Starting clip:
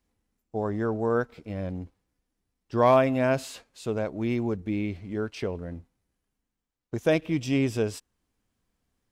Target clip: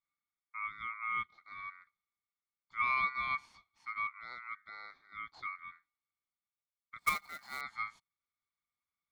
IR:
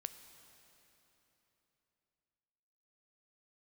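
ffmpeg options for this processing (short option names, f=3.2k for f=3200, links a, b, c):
-filter_complex "[0:a]asplit=3[a][b][c];[a]bandpass=f=530:t=q:w=8,volume=0dB[d];[b]bandpass=f=1.84k:t=q:w=8,volume=-6dB[e];[c]bandpass=f=2.48k:t=q:w=8,volume=-9dB[f];[d][e][f]amix=inputs=3:normalize=0,aeval=exprs='val(0)*sin(2*PI*1700*n/s)':c=same,asettb=1/sr,asplit=3[g][h][i];[g]atrim=end=7.004[j];[h]atrim=start=7:end=7.61,asetpts=PTS-STARTPTS,afade=t=in:d=0.004:c=qsin,afade=t=out:st=0.606:d=0.004:c=qsin,acrusher=bits=2:mode=log:mix=0:aa=0.000001[k];[i]atrim=start=7.606[l];[j][k]acrossfade=d=0.004:c1=hsin:c2=qsin[m];[m][l]acrossfade=d=0.004:c1=qsin:c2=hsin"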